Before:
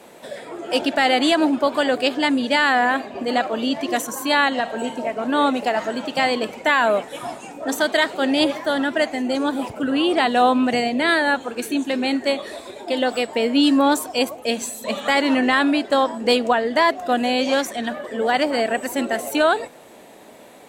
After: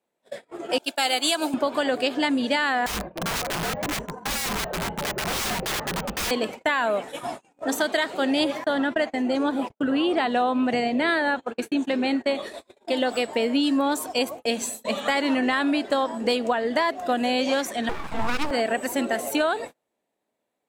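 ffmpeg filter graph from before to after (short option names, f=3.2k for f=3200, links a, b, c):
-filter_complex "[0:a]asettb=1/sr,asplit=3[a][b][c];[a]atrim=end=0.784[d];[b]atrim=start=0.78:end=1.54,asetpts=PTS-STARTPTS,afade=t=in:d=0.004:c=qsin,afade=t=out:st=0.756:d=0.004:c=qsin,agate=range=-33dB:threshold=-15dB:ratio=3:release=100:detection=peak,aemphasis=mode=production:type=riaa,bandreject=f=1.9k:w=5.6[e];[c]atrim=start=1.536[f];[d][e]acrossfade=d=0.004:c1=hsin:c2=qsin[g];[g][f]acrossfade=d=0.004:c1=qsin:c2=hsin,asettb=1/sr,asplit=3[h][i][j];[h]atrim=end=2.864[k];[i]atrim=start=2.86:end=6.31,asetpts=PTS-STARTPTS,afade=t=in:d=0.004:c=qsin,afade=t=out:st=3.446:d=0.004:c=qsin,lowpass=1.3k,aeval=exprs='(mod(11.9*val(0)+1,2)-1)/11.9':c=same,afreqshift=-59[l];[j]atrim=start=6.306[m];[k][l]acrossfade=d=0.004:c1=hsin:c2=qsin[n];[n][m]acrossfade=d=0.004:c1=qsin:c2=hsin,asettb=1/sr,asplit=3[o][p][q];[o]atrim=end=8.644[r];[p]atrim=start=8.64:end=12.35,asetpts=PTS-STARTPTS,afade=t=in:d=0.004:c=qsin,afade=t=out:st=3.706:d=0.004:c=qsin,agate=range=-25dB:threshold=-30dB:ratio=16:release=100:detection=peak,aemphasis=mode=reproduction:type=cd[s];[q]atrim=start=12.346[t];[r][s]acrossfade=d=0.004:c1=hsin:c2=qsin[u];[u][t]acrossfade=d=0.004:c1=qsin:c2=hsin,asettb=1/sr,asplit=3[v][w][x];[v]atrim=end=17.894[y];[w]atrim=start=17.89:end=18.51,asetpts=PTS-STARTPTS,afade=t=in:d=0.004:c=qsin,afade=t=out:st=0.616:d=0.004:c=qsin,equalizer=f=130:w=0.3:g=4,aeval=exprs='abs(val(0))':c=same[z];[x]atrim=start=18.506[aa];[y][z]acrossfade=d=0.004:c1=hsin:c2=qsin[ab];[ab][aa]acrossfade=d=0.004:c1=qsin:c2=hsin,agate=range=-34dB:threshold=-32dB:ratio=16:detection=peak,acompressor=threshold=-18dB:ratio=6,volume=-1dB"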